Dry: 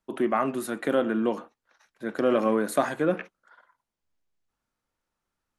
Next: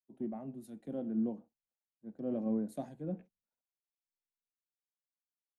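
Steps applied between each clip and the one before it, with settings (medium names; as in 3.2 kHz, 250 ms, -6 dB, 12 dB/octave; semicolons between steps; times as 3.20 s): FFT filter 220 Hz 0 dB, 370 Hz -11 dB, 790 Hz -12 dB, 1.2 kHz -30 dB, 1.7 kHz -27 dB, 4.4 kHz -24 dB; three bands expanded up and down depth 100%; trim -6.5 dB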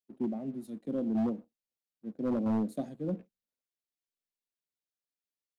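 ten-band graphic EQ 250 Hz +5 dB, 500 Hz +5 dB, 1 kHz -7 dB, 4 kHz +4 dB; waveshaping leveller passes 1; wavefolder -23 dBFS; trim -2 dB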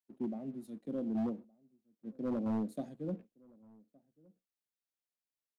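echo from a far wall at 200 m, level -26 dB; trim -4.5 dB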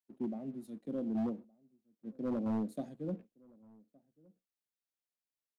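no audible change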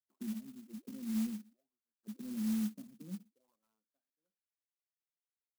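auto-wah 210–2000 Hz, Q 9.2, down, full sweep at -41 dBFS; sampling jitter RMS 0.11 ms; trim +3.5 dB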